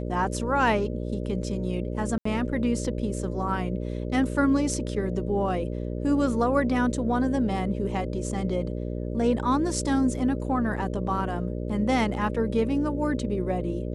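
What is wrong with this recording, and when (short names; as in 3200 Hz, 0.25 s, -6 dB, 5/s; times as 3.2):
buzz 60 Hz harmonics 10 -31 dBFS
2.18–2.25 gap 74 ms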